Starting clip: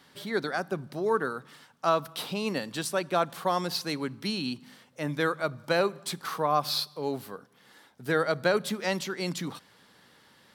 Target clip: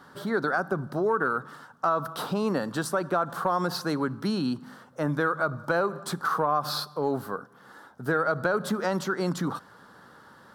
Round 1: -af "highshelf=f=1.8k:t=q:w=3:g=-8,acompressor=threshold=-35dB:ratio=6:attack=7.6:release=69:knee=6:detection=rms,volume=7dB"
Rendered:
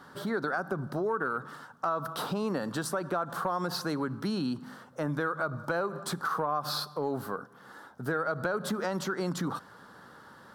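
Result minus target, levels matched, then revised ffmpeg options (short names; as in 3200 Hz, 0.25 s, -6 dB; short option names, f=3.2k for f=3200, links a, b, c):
compressor: peak gain reduction +5.5 dB
-af "highshelf=f=1.8k:t=q:w=3:g=-8,acompressor=threshold=-28.5dB:ratio=6:attack=7.6:release=69:knee=6:detection=rms,volume=7dB"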